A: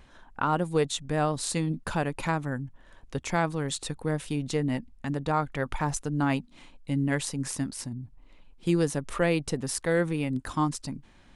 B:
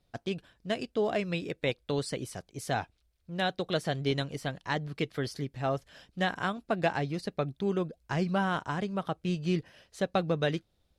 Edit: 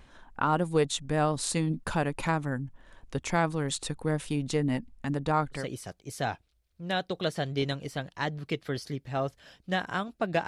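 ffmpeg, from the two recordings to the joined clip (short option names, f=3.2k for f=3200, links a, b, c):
-filter_complex "[0:a]apad=whole_dur=10.47,atrim=end=10.47,atrim=end=5.69,asetpts=PTS-STARTPTS[a];[1:a]atrim=start=2:end=6.96,asetpts=PTS-STARTPTS[b];[a][b]acrossfade=d=0.18:c1=tri:c2=tri"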